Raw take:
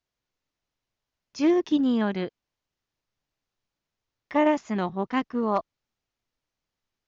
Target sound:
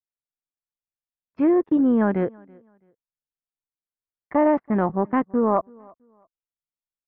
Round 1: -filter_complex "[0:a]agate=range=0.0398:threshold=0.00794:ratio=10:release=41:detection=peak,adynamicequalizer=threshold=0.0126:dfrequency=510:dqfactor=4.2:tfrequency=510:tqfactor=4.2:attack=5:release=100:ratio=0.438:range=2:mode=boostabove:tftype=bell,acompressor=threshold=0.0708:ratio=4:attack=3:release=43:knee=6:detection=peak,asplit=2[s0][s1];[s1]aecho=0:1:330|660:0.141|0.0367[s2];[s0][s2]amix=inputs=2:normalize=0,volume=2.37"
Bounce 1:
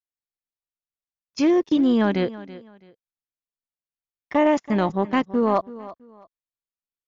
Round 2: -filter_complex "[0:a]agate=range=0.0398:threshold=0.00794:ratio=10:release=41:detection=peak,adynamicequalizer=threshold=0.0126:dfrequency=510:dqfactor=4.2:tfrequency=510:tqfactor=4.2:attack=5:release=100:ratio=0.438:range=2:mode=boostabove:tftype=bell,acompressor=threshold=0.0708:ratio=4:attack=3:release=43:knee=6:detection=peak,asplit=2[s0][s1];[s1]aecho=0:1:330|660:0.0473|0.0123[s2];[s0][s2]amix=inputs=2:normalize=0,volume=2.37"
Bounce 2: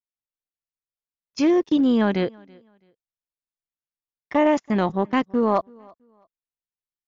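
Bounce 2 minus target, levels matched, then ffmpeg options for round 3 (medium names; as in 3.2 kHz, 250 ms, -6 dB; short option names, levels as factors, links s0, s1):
2 kHz band +4.0 dB
-filter_complex "[0:a]agate=range=0.0398:threshold=0.00794:ratio=10:release=41:detection=peak,adynamicequalizer=threshold=0.0126:dfrequency=510:dqfactor=4.2:tfrequency=510:tqfactor=4.2:attack=5:release=100:ratio=0.438:range=2:mode=boostabove:tftype=bell,acompressor=threshold=0.0708:ratio=4:attack=3:release=43:knee=6:detection=peak,lowpass=f=1700:w=0.5412,lowpass=f=1700:w=1.3066,asplit=2[s0][s1];[s1]aecho=0:1:330|660:0.0473|0.0123[s2];[s0][s2]amix=inputs=2:normalize=0,volume=2.37"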